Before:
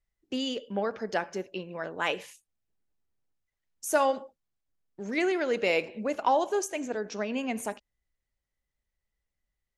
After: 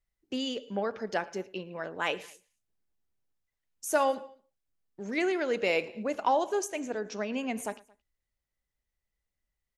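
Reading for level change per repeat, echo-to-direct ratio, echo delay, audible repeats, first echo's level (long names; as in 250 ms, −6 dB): −4.5 dB, −22.0 dB, 112 ms, 2, −23.5 dB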